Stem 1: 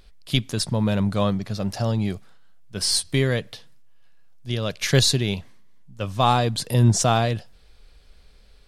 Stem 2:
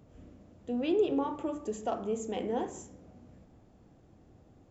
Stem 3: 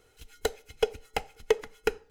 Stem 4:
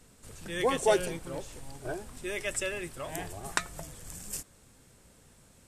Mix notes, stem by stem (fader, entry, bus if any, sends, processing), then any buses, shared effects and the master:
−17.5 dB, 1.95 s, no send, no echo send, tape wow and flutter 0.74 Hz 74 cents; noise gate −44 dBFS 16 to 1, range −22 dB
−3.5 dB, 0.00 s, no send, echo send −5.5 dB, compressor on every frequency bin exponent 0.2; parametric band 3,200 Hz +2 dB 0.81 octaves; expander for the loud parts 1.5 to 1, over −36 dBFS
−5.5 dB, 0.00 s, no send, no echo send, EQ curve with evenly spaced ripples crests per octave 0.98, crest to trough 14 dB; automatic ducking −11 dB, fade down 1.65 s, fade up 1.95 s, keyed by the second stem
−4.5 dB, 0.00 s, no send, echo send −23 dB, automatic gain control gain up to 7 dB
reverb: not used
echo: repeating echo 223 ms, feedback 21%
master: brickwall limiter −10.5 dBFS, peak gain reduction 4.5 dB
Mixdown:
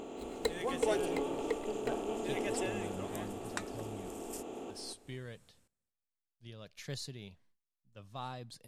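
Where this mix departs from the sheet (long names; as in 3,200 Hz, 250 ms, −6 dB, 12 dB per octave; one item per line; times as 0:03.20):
stem 1 −17.5 dB → −24.0 dB
stem 2 −3.5 dB → −13.5 dB
stem 4 −4.5 dB → −15.5 dB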